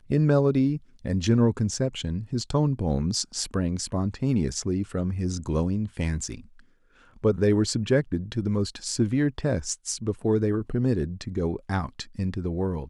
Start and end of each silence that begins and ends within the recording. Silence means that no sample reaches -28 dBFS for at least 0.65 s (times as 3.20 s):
6.35–7.24 s